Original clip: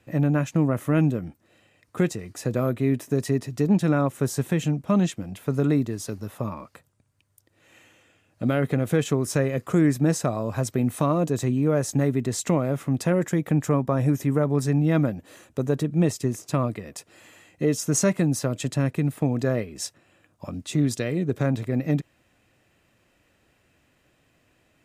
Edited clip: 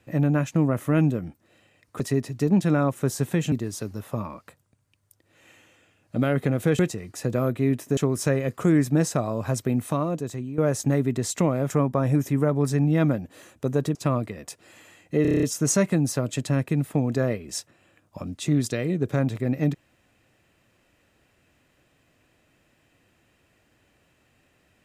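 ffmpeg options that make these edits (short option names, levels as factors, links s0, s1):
-filter_complex "[0:a]asplit=15[s0][s1][s2][s3][s4][s5][s6][s7][s8][s9][s10][s11][s12][s13][s14];[s0]atrim=end=2.002[s15];[s1]atrim=start=3.178:end=4.702[s16];[s2]atrim=start=5.788:end=9.062[s17];[s3]atrim=start=1.998:end=3.182[s18];[s4]atrim=start=9.058:end=11.67,asetpts=PTS-STARTPTS,afade=t=out:st=1.652:d=0.96:silence=0.237137[s19];[s5]atrim=start=11.67:end=12.792,asetpts=PTS-STARTPTS,afade=t=in:d=0.004:c=hsin:silence=0.237137[s20];[s6]atrim=start=13.638:end=15.892[s21];[s7]atrim=start=16.428:end=17.732[s22];[s8]atrim=start=17.698:end=17.732[s23];[s9]atrim=start=17.698:end=17.732[s24];[s10]atrim=start=17.698:end=17.732[s25];[s11]atrim=start=17.698:end=17.732[s26];[s12]atrim=start=17.698:end=17.732[s27];[s13]atrim=start=17.698:end=17.732[s28];[s14]atrim=start=17.698[s29];[s15][s16]acrossfade=d=0.004:c1=hsin:c2=hsin[s30];[s30][s17]acrossfade=d=0.004:c1=hsin:c2=hsin[s31];[s31][s18]acrossfade=d=0.004:c1=hsin:c2=hsin[s32];[s19][s20]concat=n=2:v=0:a=1[s33];[s32][s33]acrossfade=d=0.004:c1=hsin:c2=hsin[s34];[s34][s21]acrossfade=d=0.004:c1=hsin:c2=hsin[s35];[s35][s22]acrossfade=d=0.004:c1=hsin:c2=hsin[s36];[s36][s23]acrossfade=d=0.004:c1=hsin:c2=hsin[s37];[s37][s24]acrossfade=d=0.004:c1=hsin:c2=hsin[s38];[s38][s25]acrossfade=d=0.004:c1=hsin:c2=hsin[s39];[s39][s26]acrossfade=d=0.004:c1=hsin:c2=hsin[s40];[s40][s27]acrossfade=d=0.004:c1=hsin:c2=hsin[s41];[s41][s28]acrossfade=d=0.004:c1=hsin:c2=hsin[s42];[s42][s29]acrossfade=d=0.004:c1=hsin:c2=hsin"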